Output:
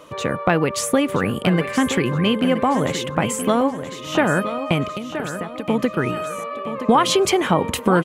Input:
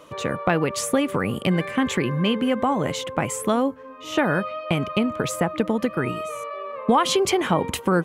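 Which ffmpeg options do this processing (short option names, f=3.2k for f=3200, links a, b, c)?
-filter_complex "[0:a]asettb=1/sr,asplit=3[a][b][c];[a]atrim=end=4.894[d];[b]atrim=start=4.89:end=5.69,asetpts=PTS-STARTPTS,afade=t=in:d=0.004:c=qsin,afade=t=out:st=0.796:d=0.004:c=qsin,acrossover=split=1400|5700[e][f][g];[e]acompressor=threshold=-33dB:ratio=4[h];[f]acompressor=threshold=-43dB:ratio=4[i];[g]acompressor=threshold=-47dB:ratio=4[j];[h][i][j]amix=inputs=3:normalize=0[k];[c]atrim=start=5.686[l];[d][k]acrossfade=d=0.004:c1=hsin:c2=qsin[m];[m][l]acrossfade=d=0.004:c1=qsin:c2=hsin,aecho=1:1:973|1946|2919|3892:0.299|0.11|0.0409|0.0151,volume=3dB"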